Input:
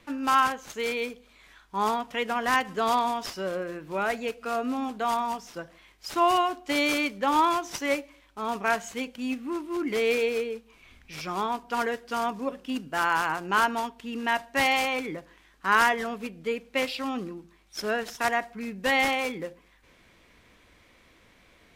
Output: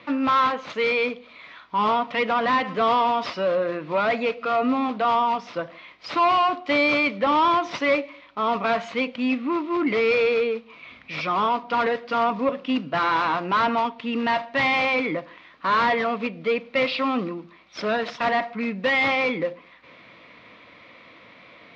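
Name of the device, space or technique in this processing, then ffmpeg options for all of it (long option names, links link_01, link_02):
overdrive pedal into a guitar cabinet: -filter_complex "[0:a]asplit=2[link_01][link_02];[link_02]highpass=frequency=720:poles=1,volume=23dB,asoftclip=type=tanh:threshold=-9dB[link_03];[link_01][link_03]amix=inputs=2:normalize=0,lowpass=frequency=1800:poles=1,volume=-6dB,highpass=100,equalizer=frequency=130:width_type=q:width=4:gain=5,equalizer=frequency=390:width_type=q:width=4:gain=-9,equalizer=frequency=820:width_type=q:width=4:gain=-8,equalizer=frequency=1600:width_type=q:width=4:gain=-10,equalizer=frequency=3000:width_type=q:width=4:gain=-4,lowpass=frequency=4200:width=0.5412,lowpass=frequency=4200:width=1.3066,volume=1.5dB"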